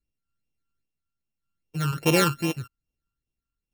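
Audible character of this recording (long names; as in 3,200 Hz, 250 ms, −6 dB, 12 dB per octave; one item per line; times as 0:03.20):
a buzz of ramps at a fixed pitch in blocks of 32 samples
sample-and-hold tremolo 3.5 Hz
phaser sweep stages 12, 2.5 Hz, lowest notch 640–1,500 Hz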